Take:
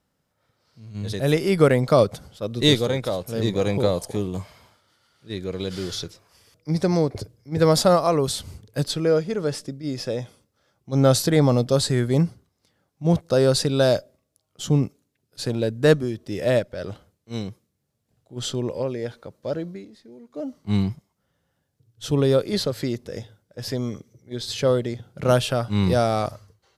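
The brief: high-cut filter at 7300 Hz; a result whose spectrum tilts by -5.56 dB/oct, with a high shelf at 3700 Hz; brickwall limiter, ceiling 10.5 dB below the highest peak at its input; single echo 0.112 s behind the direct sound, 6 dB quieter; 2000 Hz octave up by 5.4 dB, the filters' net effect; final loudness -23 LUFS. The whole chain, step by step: LPF 7300 Hz; bell 2000 Hz +8 dB; high shelf 3700 Hz -5.5 dB; limiter -13.5 dBFS; echo 0.112 s -6 dB; gain +2 dB

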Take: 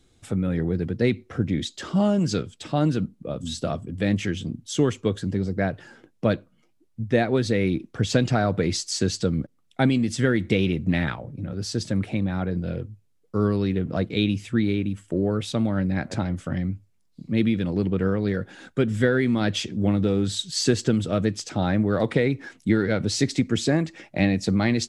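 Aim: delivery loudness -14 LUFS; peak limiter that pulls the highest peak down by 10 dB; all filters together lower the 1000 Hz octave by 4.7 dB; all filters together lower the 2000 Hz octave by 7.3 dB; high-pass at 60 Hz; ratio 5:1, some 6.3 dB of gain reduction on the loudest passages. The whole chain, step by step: HPF 60 Hz; bell 1000 Hz -5.5 dB; bell 2000 Hz -7.5 dB; compressor 5:1, threshold -23 dBFS; gain +19 dB; limiter -4 dBFS

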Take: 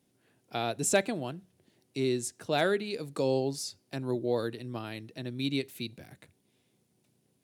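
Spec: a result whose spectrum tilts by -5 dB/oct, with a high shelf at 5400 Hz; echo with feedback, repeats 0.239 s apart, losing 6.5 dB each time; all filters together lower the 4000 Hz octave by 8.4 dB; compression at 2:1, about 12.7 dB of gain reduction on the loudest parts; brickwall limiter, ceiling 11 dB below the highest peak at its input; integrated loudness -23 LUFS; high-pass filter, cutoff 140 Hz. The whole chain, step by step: HPF 140 Hz; bell 4000 Hz -6.5 dB; high shelf 5400 Hz -8.5 dB; compressor 2:1, threshold -44 dBFS; limiter -36 dBFS; feedback echo 0.239 s, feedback 47%, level -6.5 dB; gain +23 dB

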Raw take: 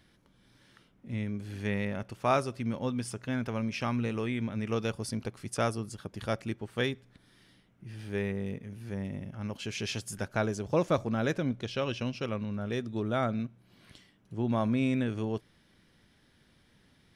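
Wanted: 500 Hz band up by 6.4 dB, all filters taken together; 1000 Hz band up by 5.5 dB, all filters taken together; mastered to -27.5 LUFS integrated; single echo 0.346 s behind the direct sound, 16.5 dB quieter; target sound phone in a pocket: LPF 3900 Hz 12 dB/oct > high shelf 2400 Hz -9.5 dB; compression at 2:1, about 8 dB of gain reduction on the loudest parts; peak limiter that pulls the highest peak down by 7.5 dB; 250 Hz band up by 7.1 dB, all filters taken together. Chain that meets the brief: bell 250 Hz +7 dB; bell 500 Hz +4.5 dB; bell 1000 Hz +7.5 dB; compressor 2:1, threshold -30 dBFS; limiter -22 dBFS; LPF 3900 Hz 12 dB/oct; high shelf 2400 Hz -9.5 dB; echo 0.346 s -16.5 dB; gain +6 dB

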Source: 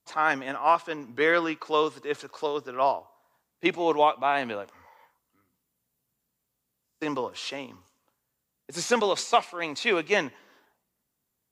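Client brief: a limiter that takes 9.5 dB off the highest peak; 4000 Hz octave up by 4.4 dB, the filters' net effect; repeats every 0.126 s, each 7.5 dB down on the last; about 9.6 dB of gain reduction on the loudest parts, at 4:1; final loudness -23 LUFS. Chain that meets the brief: bell 4000 Hz +5.5 dB; compressor 4:1, threshold -27 dBFS; limiter -23.5 dBFS; feedback echo 0.126 s, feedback 42%, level -7.5 dB; gain +11.5 dB

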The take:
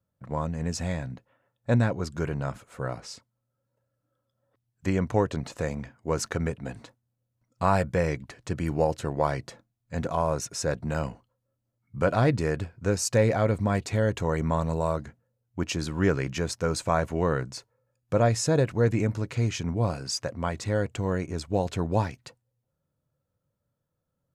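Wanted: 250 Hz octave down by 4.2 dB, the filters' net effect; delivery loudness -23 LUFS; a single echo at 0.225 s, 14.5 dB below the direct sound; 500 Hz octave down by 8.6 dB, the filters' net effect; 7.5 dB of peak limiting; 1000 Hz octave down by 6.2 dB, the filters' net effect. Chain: bell 250 Hz -4 dB; bell 500 Hz -8 dB; bell 1000 Hz -5 dB; limiter -21.5 dBFS; echo 0.225 s -14.5 dB; gain +10.5 dB

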